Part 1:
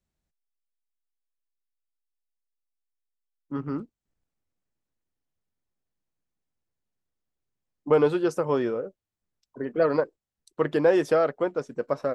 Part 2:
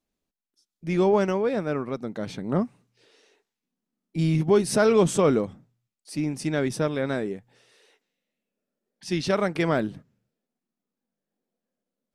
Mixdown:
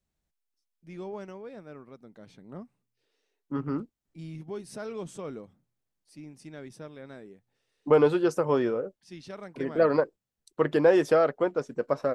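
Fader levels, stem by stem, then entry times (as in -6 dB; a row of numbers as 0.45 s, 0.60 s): 0.0 dB, -18.0 dB; 0.00 s, 0.00 s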